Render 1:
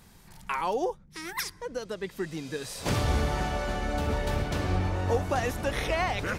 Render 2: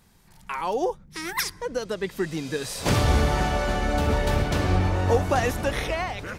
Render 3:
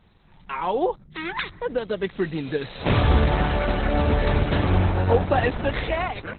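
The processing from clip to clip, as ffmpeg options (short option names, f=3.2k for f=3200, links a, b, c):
-af "dynaudnorm=f=160:g=9:m=10dB,volume=-4dB"
-af "volume=3dB" -ar 48000 -c:a libopus -b:a 8k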